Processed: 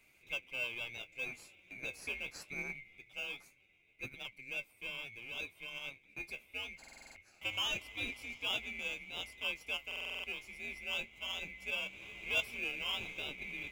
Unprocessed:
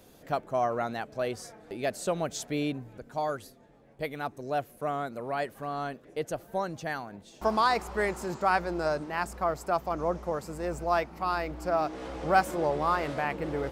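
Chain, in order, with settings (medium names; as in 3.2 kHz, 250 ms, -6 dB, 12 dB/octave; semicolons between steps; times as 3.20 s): split-band scrambler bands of 2 kHz; flange 0.24 Hz, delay 7.6 ms, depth 8 ms, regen +45%; in parallel at -9.5 dB: sample-and-hold 21×; on the sum: buffer glitch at 6.79/9.87 s, samples 2048, times 7; trim -8.5 dB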